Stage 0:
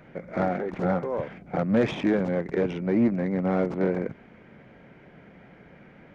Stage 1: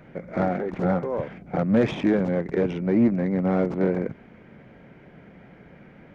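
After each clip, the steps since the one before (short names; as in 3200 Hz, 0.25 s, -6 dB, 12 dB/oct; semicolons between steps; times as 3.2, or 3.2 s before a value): low shelf 430 Hz +3.5 dB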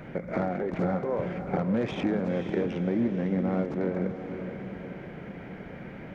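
compressor 3:1, threshold -35 dBFS, peak gain reduction 15 dB; diffused feedback echo 0.508 s, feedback 48%, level -8 dB; gain +6 dB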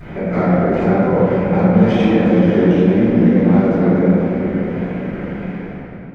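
ending faded out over 0.89 s; vibrato 1.5 Hz 84 cents; reverb RT60 2.1 s, pre-delay 7 ms, DRR -10 dB; gain -1 dB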